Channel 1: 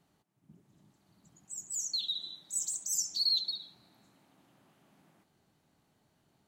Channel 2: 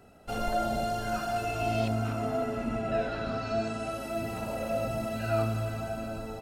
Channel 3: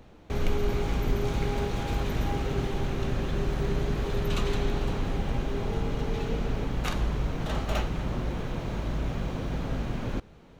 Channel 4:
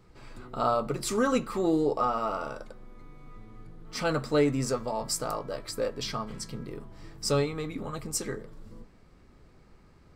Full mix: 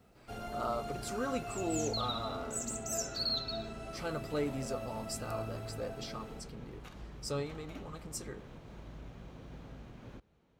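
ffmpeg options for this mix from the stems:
ffmpeg -i stem1.wav -i stem2.wav -i stem3.wav -i stem4.wav -filter_complex "[0:a]volume=-5.5dB[link_01];[1:a]acrusher=bits=10:mix=0:aa=0.000001,volume=-11.5dB[link_02];[2:a]alimiter=limit=-21dB:level=0:latency=1:release=155,volume=-17dB[link_03];[3:a]volume=-10.5dB[link_04];[link_01][link_02][link_03][link_04]amix=inputs=4:normalize=0,highpass=40" out.wav

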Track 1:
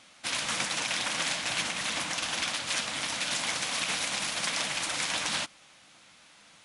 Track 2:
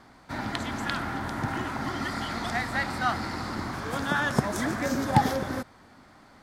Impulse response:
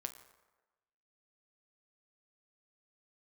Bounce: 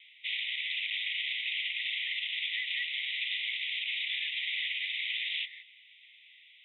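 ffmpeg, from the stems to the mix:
-filter_complex "[0:a]volume=3dB[link_01];[1:a]volume=1dB[link_02];[link_01][link_02]amix=inputs=2:normalize=0,asuperpass=centerf=2700:order=20:qfactor=1.5,alimiter=limit=-24dB:level=0:latency=1:release=44"

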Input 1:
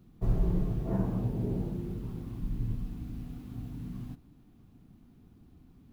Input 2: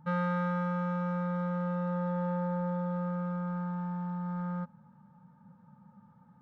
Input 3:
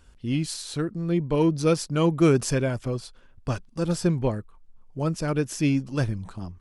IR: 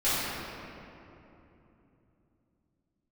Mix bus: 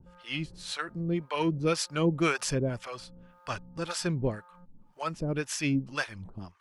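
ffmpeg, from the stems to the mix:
-filter_complex "[0:a]acompressor=mode=upward:threshold=-42dB:ratio=2.5,volume=-11dB[link_01];[1:a]highpass=190,acompressor=threshold=-43dB:ratio=4,lowpass=1500,volume=0dB[link_02];[2:a]equalizer=frequency=2200:width_type=o:width=3:gain=10.5,volume=-3.5dB[link_03];[link_01][link_02]amix=inputs=2:normalize=0,alimiter=level_in=18dB:limit=-24dB:level=0:latency=1:release=450,volume=-18dB,volume=0dB[link_04];[link_03][link_04]amix=inputs=2:normalize=0,acrossover=split=600[link_05][link_06];[link_05]aeval=exprs='val(0)*(1-1/2+1/2*cos(2*PI*1.9*n/s))':channel_layout=same[link_07];[link_06]aeval=exprs='val(0)*(1-1/2-1/2*cos(2*PI*1.9*n/s))':channel_layout=same[link_08];[link_07][link_08]amix=inputs=2:normalize=0"

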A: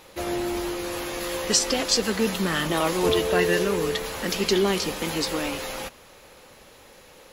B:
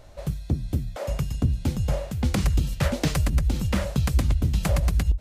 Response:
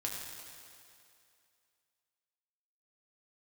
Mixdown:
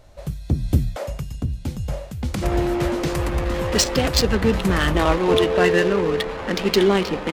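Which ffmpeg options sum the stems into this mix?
-filter_complex "[0:a]adynamicequalizer=threshold=0.00794:dfrequency=5800:dqfactor=2.5:tfrequency=5800:tqfactor=2.5:attack=5:release=100:ratio=0.375:range=2:mode=cutabove:tftype=bell,adynamicsmooth=sensitivity=2.5:basefreq=1200,adelay=2250,volume=-5.5dB[link_01];[1:a]volume=-1.5dB,afade=type=out:start_time=0.84:duration=0.28:silence=0.266073[link_02];[link_01][link_02]amix=inputs=2:normalize=0,dynaudnorm=framelen=380:gausssize=3:maxgain=11dB"

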